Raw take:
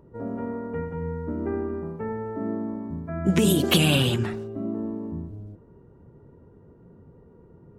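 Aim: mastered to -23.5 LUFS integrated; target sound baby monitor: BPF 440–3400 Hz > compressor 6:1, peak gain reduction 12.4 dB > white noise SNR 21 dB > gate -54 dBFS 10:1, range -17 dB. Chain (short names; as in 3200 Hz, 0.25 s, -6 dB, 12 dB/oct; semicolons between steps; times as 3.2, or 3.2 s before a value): BPF 440–3400 Hz; compressor 6:1, threshold -32 dBFS; white noise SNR 21 dB; gate -54 dBFS 10:1, range -17 dB; gain +14 dB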